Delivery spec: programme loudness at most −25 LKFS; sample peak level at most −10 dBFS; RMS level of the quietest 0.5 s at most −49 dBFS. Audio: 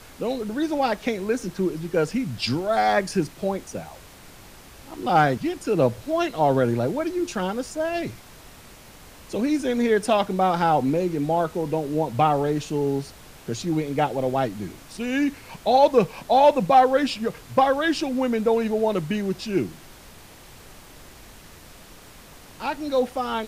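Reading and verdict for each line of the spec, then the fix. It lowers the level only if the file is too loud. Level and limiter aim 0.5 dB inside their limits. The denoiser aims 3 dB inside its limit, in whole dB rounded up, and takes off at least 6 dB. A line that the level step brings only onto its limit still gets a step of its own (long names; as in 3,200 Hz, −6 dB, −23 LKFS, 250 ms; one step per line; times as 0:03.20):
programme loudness −23.5 LKFS: out of spec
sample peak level −7.0 dBFS: out of spec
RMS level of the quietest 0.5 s −46 dBFS: out of spec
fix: broadband denoise 6 dB, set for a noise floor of −46 dBFS
level −2 dB
brickwall limiter −10.5 dBFS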